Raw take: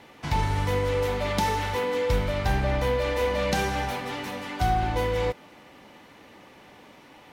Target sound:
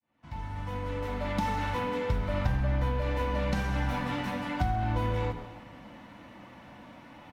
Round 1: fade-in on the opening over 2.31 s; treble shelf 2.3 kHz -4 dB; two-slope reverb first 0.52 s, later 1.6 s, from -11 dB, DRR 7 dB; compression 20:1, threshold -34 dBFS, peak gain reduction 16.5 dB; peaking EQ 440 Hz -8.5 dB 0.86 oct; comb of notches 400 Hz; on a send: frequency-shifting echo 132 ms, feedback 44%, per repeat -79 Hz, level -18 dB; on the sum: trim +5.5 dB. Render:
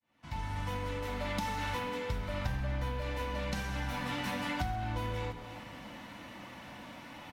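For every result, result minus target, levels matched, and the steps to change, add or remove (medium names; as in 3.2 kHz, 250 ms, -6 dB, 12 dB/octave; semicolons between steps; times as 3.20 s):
compression: peak gain reduction +7 dB; 4 kHz band +7.0 dB
change: compression 20:1, threshold -27 dBFS, peak gain reduction 10 dB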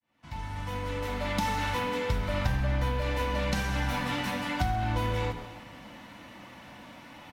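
4 kHz band +5.5 dB
change: treble shelf 2.3 kHz -14 dB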